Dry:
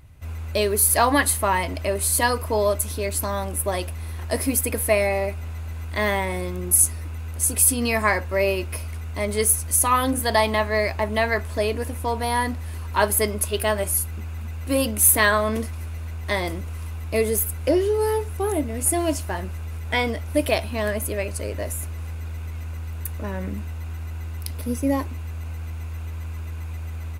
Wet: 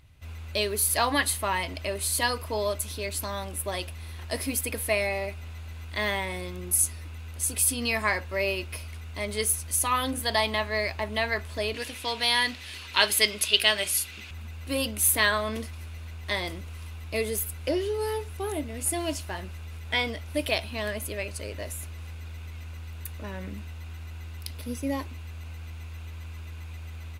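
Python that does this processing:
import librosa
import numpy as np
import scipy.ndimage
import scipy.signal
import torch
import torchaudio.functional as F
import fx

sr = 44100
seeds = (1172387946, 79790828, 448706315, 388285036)

y = fx.weighting(x, sr, curve='D', at=(11.74, 14.31))
y = fx.peak_eq(y, sr, hz=3500.0, db=9.0, octaves=1.6)
y = F.gain(torch.from_numpy(y), -8.0).numpy()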